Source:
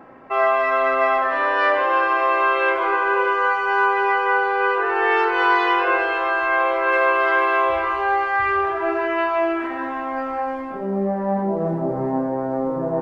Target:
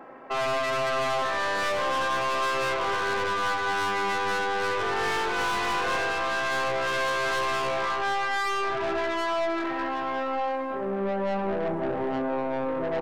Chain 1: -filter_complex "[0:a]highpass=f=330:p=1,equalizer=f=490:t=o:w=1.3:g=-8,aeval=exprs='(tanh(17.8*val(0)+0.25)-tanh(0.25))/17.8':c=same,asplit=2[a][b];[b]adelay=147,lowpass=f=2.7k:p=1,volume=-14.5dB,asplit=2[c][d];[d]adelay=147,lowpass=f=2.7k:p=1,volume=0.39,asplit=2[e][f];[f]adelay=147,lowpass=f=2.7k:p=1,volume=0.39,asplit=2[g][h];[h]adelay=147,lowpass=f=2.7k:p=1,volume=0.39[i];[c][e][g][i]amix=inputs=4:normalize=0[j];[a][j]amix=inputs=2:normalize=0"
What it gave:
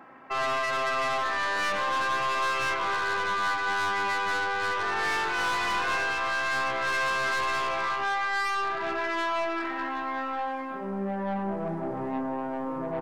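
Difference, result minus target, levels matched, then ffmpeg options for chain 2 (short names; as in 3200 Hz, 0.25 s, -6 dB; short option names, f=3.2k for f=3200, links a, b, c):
500 Hz band -4.5 dB
-filter_complex "[0:a]highpass=f=330:p=1,equalizer=f=490:t=o:w=1.3:g=2.5,aeval=exprs='(tanh(17.8*val(0)+0.25)-tanh(0.25))/17.8':c=same,asplit=2[a][b];[b]adelay=147,lowpass=f=2.7k:p=1,volume=-14.5dB,asplit=2[c][d];[d]adelay=147,lowpass=f=2.7k:p=1,volume=0.39,asplit=2[e][f];[f]adelay=147,lowpass=f=2.7k:p=1,volume=0.39,asplit=2[g][h];[h]adelay=147,lowpass=f=2.7k:p=1,volume=0.39[i];[c][e][g][i]amix=inputs=4:normalize=0[j];[a][j]amix=inputs=2:normalize=0"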